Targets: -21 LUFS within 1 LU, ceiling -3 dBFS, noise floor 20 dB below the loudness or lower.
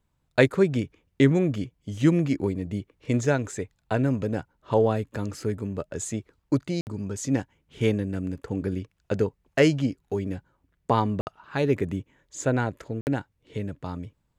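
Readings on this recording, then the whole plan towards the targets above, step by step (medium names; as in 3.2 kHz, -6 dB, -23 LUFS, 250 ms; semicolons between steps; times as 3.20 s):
dropouts 3; longest dropout 59 ms; loudness -27.0 LUFS; peak level -5.0 dBFS; loudness target -21.0 LUFS
-> interpolate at 6.81/11.21/13.01 s, 59 ms; trim +6 dB; peak limiter -3 dBFS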